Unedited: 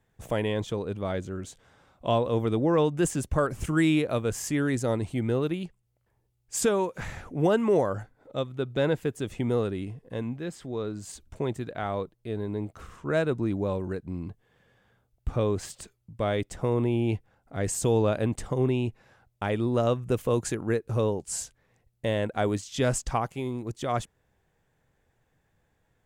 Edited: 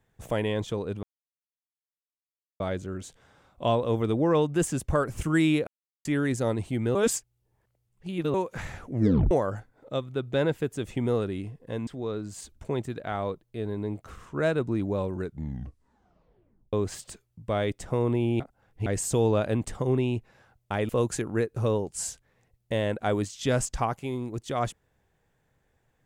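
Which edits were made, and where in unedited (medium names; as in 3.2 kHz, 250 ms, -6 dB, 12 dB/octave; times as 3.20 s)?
1.03 s: insert silence 1.57 s
4.10–4.48 s: mute
5.38–6.77 s: reverse
7.33 s: tape stop 0.41 s
10.30–10.58 s: delete
13.89 s: tape stop 1.55 s
17.11–17.57 s: reverse
19.60–20.22 s: delete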